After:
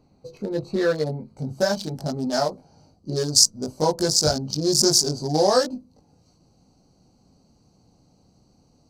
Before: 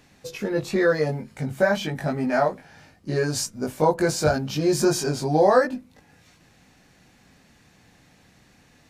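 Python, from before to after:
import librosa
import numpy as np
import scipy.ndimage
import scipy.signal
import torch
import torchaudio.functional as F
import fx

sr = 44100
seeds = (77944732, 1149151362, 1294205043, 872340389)

y = fx.wiener(x, sr, points=25)
y = fx.high_shelf_res(y, sr, hz=3500.0, db=fx.steps((0.0, 6.0), (1.36, 13.0)), q=3.0)
y = F.gain(torch.from_numpy(y), -1.0).numpy()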